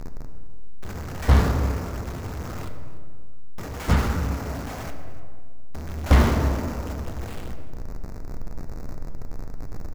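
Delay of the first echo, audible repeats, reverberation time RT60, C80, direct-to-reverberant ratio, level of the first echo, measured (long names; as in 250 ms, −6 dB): 294 ms, 1, 2.0 s, 8.0 dB, 5.0 dB, −19.5 dB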